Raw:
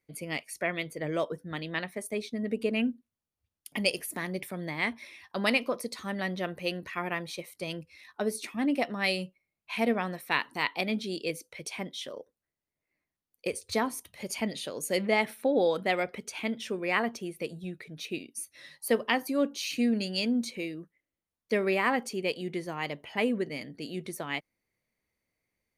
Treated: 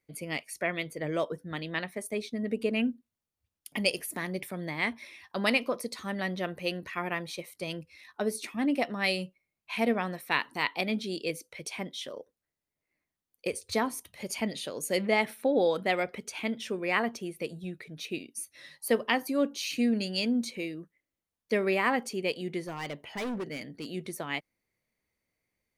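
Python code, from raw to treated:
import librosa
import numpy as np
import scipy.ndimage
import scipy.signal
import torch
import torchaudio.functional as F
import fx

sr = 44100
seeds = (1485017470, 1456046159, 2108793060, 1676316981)

y = fx.clip_hard(x, sr, threshold_db=-31.5, at=(22.6, 23.86))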